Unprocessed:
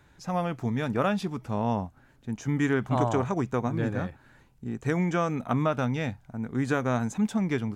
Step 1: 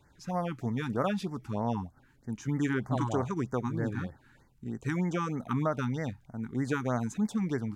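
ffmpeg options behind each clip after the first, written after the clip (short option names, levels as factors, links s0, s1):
-af "afftfilt=real='re*(1-between(b*sr/1024,520*pow(3200/520,0.5+0.5*sin(2*PI*3.2*pts/sr))/1.41,520*pow(3200/520,0.5+0.5*sin(2*PI*3.2*pts/sr))*1.41))':imag='im*(1-between(b*sr/1024,520*pow(3200/520,0.5+0.5*sin(2*PI*3.2*pts/sr))/1.41,520*pow(3200/520,0.5+0.5*sin(2*PI*3.2*pts/sr))*1.41))':win_size=1024:overlap=0.75,volume=0.668"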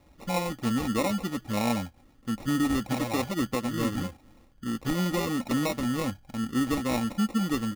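-af "acrusher=samples=28:mix=1:aa=0.000001,aecho=1:1:3.7:0.52,alimiter=limit=0.075:level=0:latency=1:release=325,volume=1.68"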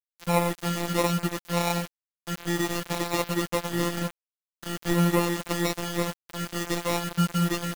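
-af "afftfilt=real='hypot(re,im)*cos(PI*b)':imag='0':win_size=1024:overlap=0.75,aeval=exprs='sgn(val(0))*max(abs(val(0))-0.00596,0)':c=same,acrusher=bits=6:mix=0:aa=0.000001,volume=2.24"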